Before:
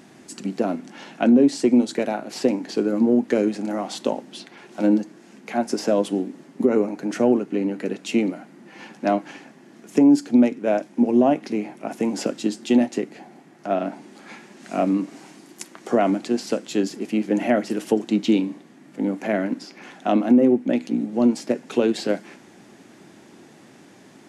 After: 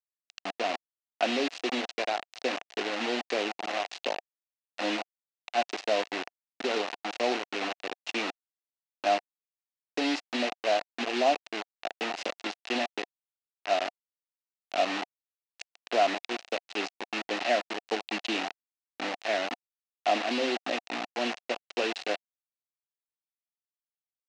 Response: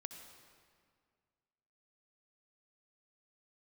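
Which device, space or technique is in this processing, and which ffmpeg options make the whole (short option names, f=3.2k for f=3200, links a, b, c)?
hand-held game console: -af "highshelf=f=2.8k:g=3,acrusher=bits=3:mix=0:aa=0.000001,highpass=450,equalizer=f=720:t=q:w=4:g=8,equalizer=f=1.9k:t=q:w=4:g=4,equalizer=f=2.7k:t=q:w=4:g=8,equalizer=f=4k:t=q:w=4:g=4,lowpass=f=6k:w=0.5412,lowpass=f=6k:w=1.3066,volume=-8.5dB"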